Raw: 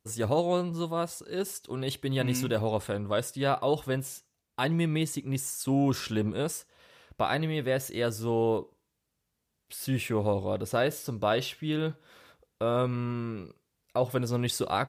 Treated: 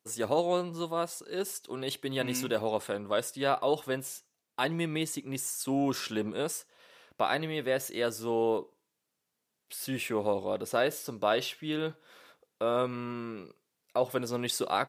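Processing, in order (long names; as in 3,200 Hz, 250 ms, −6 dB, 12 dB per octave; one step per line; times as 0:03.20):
Bessel high-pass filter 280 Hz, order 2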